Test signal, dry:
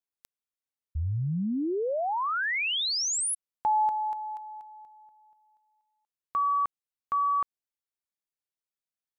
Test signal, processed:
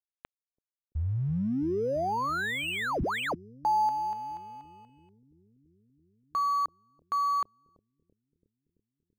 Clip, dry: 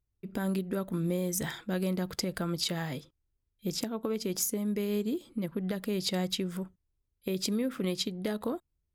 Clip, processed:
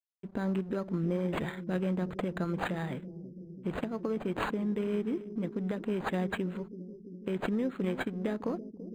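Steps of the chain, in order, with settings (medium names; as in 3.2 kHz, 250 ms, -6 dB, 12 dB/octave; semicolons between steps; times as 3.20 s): crossover distortion -55 dBFS; bucket-brigade echo 334 ms, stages 1024, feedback 77%, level -12.5 dB; decimation joined by straight lines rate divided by 8×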